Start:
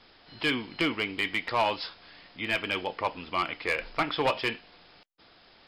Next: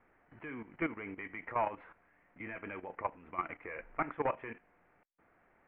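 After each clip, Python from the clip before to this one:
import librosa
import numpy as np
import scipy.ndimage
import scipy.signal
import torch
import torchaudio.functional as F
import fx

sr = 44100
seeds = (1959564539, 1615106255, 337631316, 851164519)

y = scipy.signal.sosfilt(scipy.signal.butter(8, 2200.0, 'lowpass', fs=sr, output='sos'), x)
y = fx.level_steps(y, sr, step_db=13)
y = y * librosa.db_to_amplitude(-4.0)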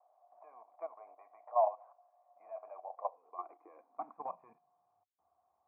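y = fx.filter_sweep_highpass(x, sr, from_hz=610.0, to_hz=75.0, start_s=2.92, end_s=5.36, q=7.5)
y = fx.formant_cascade(y, sr, vowel='a')
y = y * librosa.db_to_amplitude(2.0)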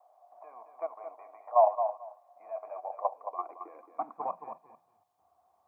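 y = fx.echo_feedback(x, sr, ms=221, feedback_pct=16, wet_db=-8.5)
y = y * librosa.db_to_amplitude(7.0)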